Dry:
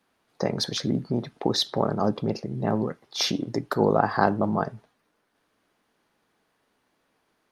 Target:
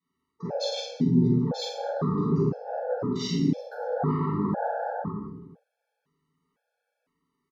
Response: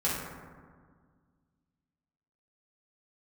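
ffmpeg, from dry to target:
-filter_complex "[0:a]aecho=1:1:40|104|206.4|370.2|632.4:0.631|0.398|0.251|0.158|0.1,areverse,acompressor=threshold=-30dB:ratio=12,areverse,afwtdn=0.01[link_01];[1:a]atrim=start_sample=2205,afade=type=out:start_time=0.37:duration=0.01,atrim=end_sample=16758[link_02];[link_01][link_02]afir=irnorm=-1:irlink=0,afftfilt=real='re*gt(sin(2*PI*0.99*pts/sr)*(1-2*mod(floor(b*sr/1024/450),2)),0)':imag='im*gt(sin(2*PI*0.99*pts/sr)*(1-2*mod(floor(b*sr/1024/450),2)),0)':win_size=1024:overlap=0.75"

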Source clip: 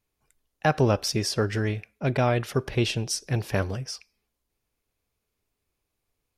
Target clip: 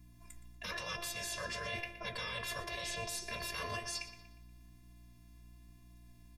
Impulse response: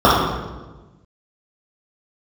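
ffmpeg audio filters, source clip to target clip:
-filter_complex "[0:a]afftfilt=real='hypot(re,im)*cos(PI*b)':imag='0':win_size=512:overlap=0.75,afftfilt=real='re*lt(hypot(re,im),0.0398)':imag='im*lt(hypot(re,im),0.0398)':win_size=1024:overlap=0.75,aecho=1:1:1.8:0.66,acrossover=split=220|3000[link_01][link_02][link_03];[link_02]acompressor=threshold=-32dB:ratio=8[link_04];[link_01][link_04][link_03]amix=inputs=3:normalize=0,alimiter=level_in=10dB:limit=-24dB:level=0:latency=1:release=115,volume=-10dB,areverse,acompressor=threshold=-49dB:ratio=16,areverse,aeval=exprs='val(0)+0.000355*(sin(2*PI*60*n/s)+sin(2*PI*2*60*n/s)/2+sin(2*PI*3*60*n/s)/3+sin(2*PI*4*60*n/s)/4+sin(2*PI*5*60*n/s)/5)':channel_layout=same,bandreject=frequency=347.3:width_type=h:width=4,bandreject=frequency=694.6:width_type=h:width=4,bandreject=frequency=1041.9:width_type=h:width=4,bandreject=frequency=1389.2:width_type=h:width=4,bandreject=frequency=1736.5:width_type=h:width=4,bandreject=frequency=2083.8:width_type=h:width=4,bandreject=frequency=2431.1:width_type=h:width=4,bandreject=frequency=2778.4:width_type=h:width=4,bandreject=frequency=3125.7:width_type=h:width=4,bandreject=frequency=3473:width_type=h:width=4,bandreject=frequency=3820.3:width_type=h:width=4,bandreject=frequency=4167.6:width_type=h:width=4,bandreject=frequency=4514.9:width_type=h:width=4,bandreject=frequency=4862.2:width_type=h:width=4,bandreject=frequency=5209.5:width_type=h:width=4,bandreject=frequency=5556.8:width_type=h:width=4,bandreject=frequency=5904.1:width_type=h:width=4,bandreject=frequency=6251.4:width_type=h:width=4,bandreject=frequency=6598.7:width_type=h:width=4,flanger=delay=5.8:depth=9.5:regen=-60:speed=1:shape=sinusoidal,asplit=2[link_05][link_06];[link_06]adelay=119,lowpass=frequency=4500:poles=1,volume=-13dB,asplit=2[link_07][link_08];[link_08]adelay=119,lowpass=frequency=4500:poles=1,volume=0.48,asplit=2[link_09][link_10];[link_10]adelay=119,lowpass=frequency=4500:poles=1,volume=0.48,asplit=2[link_11][link_12];[link_12]adelay=119,lowpass=frequency=4500:poles=1,volume=0.48,asplit=2[link_13][link_14];[link_14]adelay=119,lowpass=frequency=4500:poles=1,volume=0.48[link_15];[link_07][link_09][link_11][link_13][link_15]amix=inputs=5:normalize=0[link_16];[link_05][link_16]amix=inputs=2:normalize=0,volume=16.5dB"

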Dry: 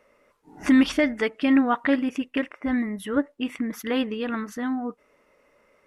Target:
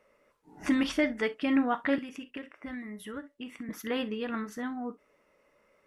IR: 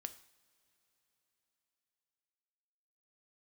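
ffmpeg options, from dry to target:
-filter_complex "[1:a]atrim=start_sample=2205,atrim=end_sample=3087[link_01];[0:a][link_01]afir=irnorm=-1:irlink=0,asettb=1/sr,asplit=3[link_02][link_03][link_04];[link_02]atrim=end=1.984[link_05];[link_03]atrim=start=1.98:end=3.69,asetpts=PTS-STARTPTS,afade=type=in:duration=0.004:curve=qsin,afade=type=out:start_time=1.706:duration=0.004:curve=qsin,acrossover=split=250|1500[link_06][link_07][link_08];[link_06]acompressor=threshold=-44dB:ratio=4[link_09];[link_07]acompressor=threshold=-43dB:ratio=4[link_10];[link_08]acompressor=threshold=-45dB:ratio=4[link_11];[link_09][link_10][link_11]amix=inputs=3:normalize=0[link_12];[link_04]atrim=start=3.686[link_13];[link_05][link_12]acrossfade=duration=0.004:curve1=hsin:curve2=qsin[link_14];[link_14][link_13]acrossfade=duration=0.004:curve1=qsin:curve2=hsin,volume=-1.5dB"

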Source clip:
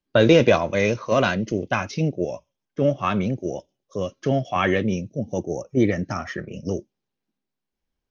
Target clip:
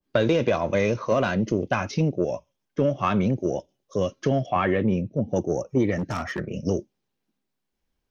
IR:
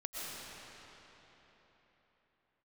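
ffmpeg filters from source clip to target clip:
-filter_complex "[0:a]acompressor=threshold=-20dB:ratio=8,asoftclip=type=tanh:threshold=-12.5dB,asettb=1/sr,asplit=3[link_01][link_02][link_03];[link_01]atrim=end=4.464[link_04];[link_02]atrim=start=4.46:end=5.36,asetpts=PTS-STARTPTS,afade=type=in:duration=0.004:curve=qsin,afade=type=out:start_time=0.896:duration=0.004:curve=qsin,lowpass=2800[link_05];[link_03]atrim=start=5.356[link_06];[link_04][link_05]acrossfade=duration=0.004:curve1=hsin:curve2=qsin[link_07];[link_07][link_06]acrossfade=duration=0.004:curve1=qsin:curve2=hsin,asplit=3[link_08][link_09][link_10];[link_08]afade=type=out:start_time=5.96:duration=0.02[link_11];[link_09]volume=27dB,asoftclip=hard,volume=-27dB,afade=type=in:start_time=5.96:duration=0.02,afade=type=out:start_time=6.38:duration=0.02[link_12];[link_10]afade=type=in:start_time=6.38:duration=0.02[link_13];[link_11][link_12][link_13]amix=inputs=3:normalize=0,adynamicequalizer=threshold=0.00708:dfrequency=1600:dqfactor=0.7:tfrequency=1600:tqfactor=0.7:attack=5:release=100:ratio=0.375:range=2.5:mode=cutabove:tftype=highshelf,volume=3.5dB"

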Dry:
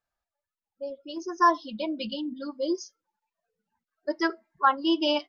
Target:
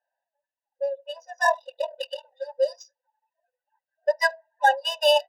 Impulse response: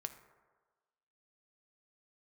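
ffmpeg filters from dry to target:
-filter_complex "[0:a]asettb=1/sr,asplit=3[link_01][link_02][link_03];[link_01]atrim=end=1.454[link_04];[link_02]atrim=start=1.45:end=2.25,asetpts=PTS-STARTPTS,afade=type=in:duration=0.004:curve=qsin,afade=type=out:start_time=0.796:duration=0.004:curve=qsin,aeval=exprs='val(0)*sin(2*PI*20*n/s)':channel_layout=same[link_05];[link_03]atrim=start=2.246[link_06];[link_04][link_05]acrossfade=duration=0.004:curve1=hsin:curve2=qsin[link_07];[link_07][link_06]acrossfade=duration=0.004:curve1=qsin:curve2=hsin,adynamicsmooth=sensitivity=5.5:basefreq=2200,afftfilt=real='re*eq(mod(floor(b*sr/1024/500),2),1)':imag='im*eq(mod(floor(b*sr/1024/500),2),1)':win_size=1024:overlap=0.75,volume=8.5dB"

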